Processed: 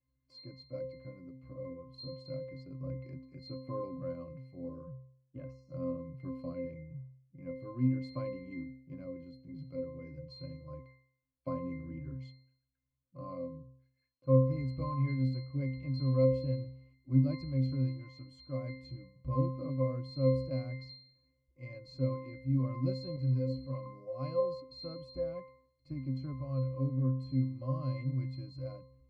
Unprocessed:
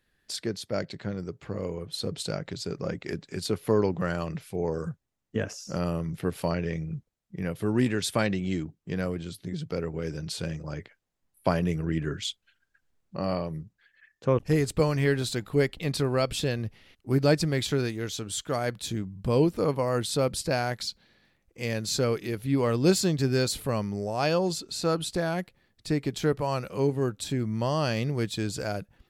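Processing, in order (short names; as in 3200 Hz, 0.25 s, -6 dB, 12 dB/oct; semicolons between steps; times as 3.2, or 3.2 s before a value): octave resonator C, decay 0.6 s; 23.16–23.86 ensemble effect; gain +7 dB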